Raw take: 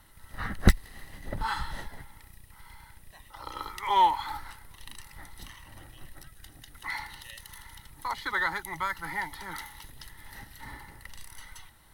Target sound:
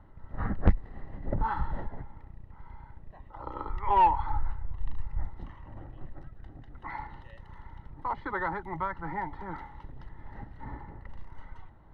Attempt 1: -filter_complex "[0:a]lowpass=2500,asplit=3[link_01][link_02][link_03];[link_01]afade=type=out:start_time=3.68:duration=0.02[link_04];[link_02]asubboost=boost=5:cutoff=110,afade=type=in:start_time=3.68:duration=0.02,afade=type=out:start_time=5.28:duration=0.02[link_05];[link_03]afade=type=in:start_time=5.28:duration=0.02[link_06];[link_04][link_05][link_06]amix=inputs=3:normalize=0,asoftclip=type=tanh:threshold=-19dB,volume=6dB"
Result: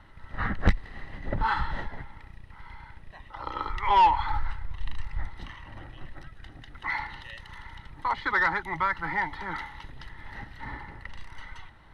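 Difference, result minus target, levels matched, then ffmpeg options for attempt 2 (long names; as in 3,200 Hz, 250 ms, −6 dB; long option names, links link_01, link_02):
2,000 Hz band +8.0 dB
-filter_complex "[0:a]lowpass=820,asplit=3[link_01][link_02][link_03];[link_01]afade=type=out:start_time=3.68:duration=0.02[link_04];[link_02]asubboost=boost=5:cutoff=110,afade=type=in:start_time=3.68:duration=0.02,afade=type=out:start_time=5.28:duration=0.02[link_05];[link_03]afade=type=in:start_time=5.28:duration=0.02[link_06];[link_04][link_05][link_06]amix=inputs=3:normalize=0,asoftclip=type=tanh:threshold=-19dB,volume=6dB"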